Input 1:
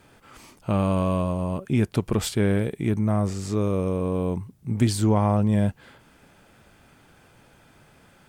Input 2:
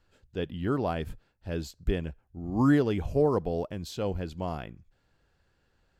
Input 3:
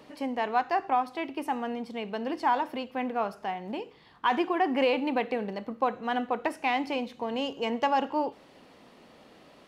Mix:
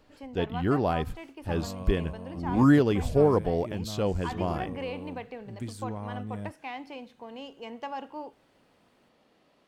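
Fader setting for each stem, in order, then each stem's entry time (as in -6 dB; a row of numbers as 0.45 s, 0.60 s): -16.5 dB, +3.0 dB, -11.0 dB; 0.80 s, 0.00 s, 0.00 s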